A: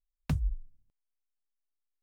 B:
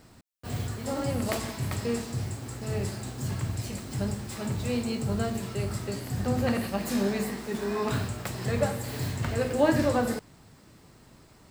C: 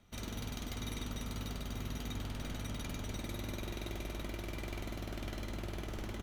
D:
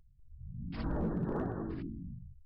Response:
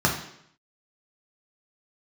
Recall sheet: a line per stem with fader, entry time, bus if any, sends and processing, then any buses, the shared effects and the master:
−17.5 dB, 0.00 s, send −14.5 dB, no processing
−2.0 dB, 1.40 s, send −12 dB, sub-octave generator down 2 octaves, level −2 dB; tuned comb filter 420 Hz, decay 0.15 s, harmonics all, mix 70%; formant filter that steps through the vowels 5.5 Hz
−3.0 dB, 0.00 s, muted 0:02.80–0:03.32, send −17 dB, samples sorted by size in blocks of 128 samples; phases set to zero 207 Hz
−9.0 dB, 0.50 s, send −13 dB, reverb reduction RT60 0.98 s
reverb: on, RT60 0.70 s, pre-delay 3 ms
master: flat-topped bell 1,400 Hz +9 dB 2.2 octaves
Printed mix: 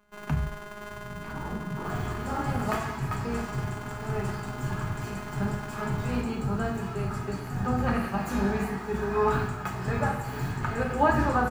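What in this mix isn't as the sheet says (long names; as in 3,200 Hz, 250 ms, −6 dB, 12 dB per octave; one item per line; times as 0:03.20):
stem A −17.5 dB → −7.0 dB
stem B: missing formant filter that steps through the vowels 5.5 Hz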